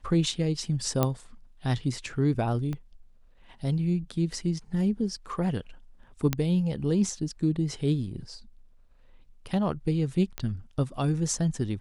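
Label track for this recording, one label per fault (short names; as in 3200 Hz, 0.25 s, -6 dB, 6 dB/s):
1.030000	1.030000	pop -10 dBFS
2.730000	2.730000	pop -22 dBFS
6.330000	6.330000	pop -10 dBFS
10.380000	10.380000	pop -16 dBFS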